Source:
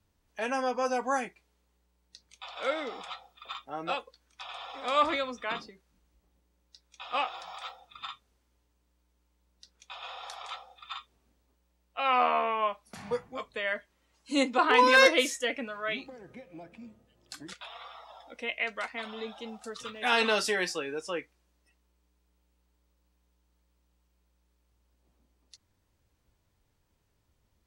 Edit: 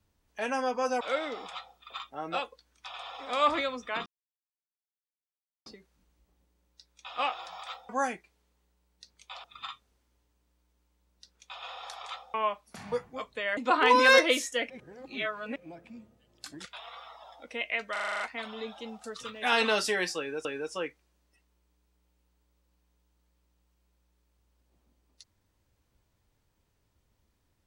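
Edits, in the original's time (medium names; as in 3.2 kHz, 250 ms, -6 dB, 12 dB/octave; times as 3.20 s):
1.01–2.56 s: move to 7.84 s
5.61 s: insert silence 1.60 s
10.74–12.53 s: delete
13.76–14.45 s: delete
15.58–16.44 s: reverse
18.80 s: stutter 0.04 s, 8 plays
20.78–21.05 s: loop, 2 plays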